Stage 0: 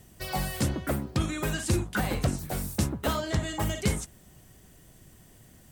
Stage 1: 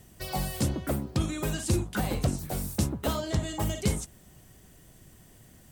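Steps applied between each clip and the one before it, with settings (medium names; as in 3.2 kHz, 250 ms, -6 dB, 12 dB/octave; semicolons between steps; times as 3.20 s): dynamic bell 1.7 kHz, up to -6 dB, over -47 dBFS, Q 1.1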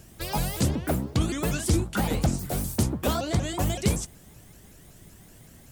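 in parallel at -8 dB: saturation -22.5 dBFS, distortion -14 dB; on the sum: vibrato with a chosen wave saw up 5.3 Hz, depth 250 cents; trim +1 dB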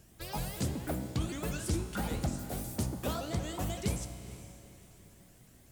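feedback comb 62 Hz, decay 1.9 s, harmonics all, mix 70%; echo that smears into a reverb 460 ms, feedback 41%, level -14.5 dB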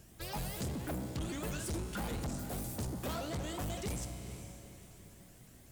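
saturation -35.5 dBFS, distortion -8 dB; trim +1.5 dB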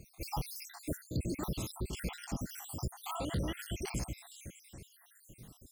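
random holes in the spectrogram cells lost 71%; peaking EQ 610 Hz -4.5 dB 0.43 oct; trim +5.5 dB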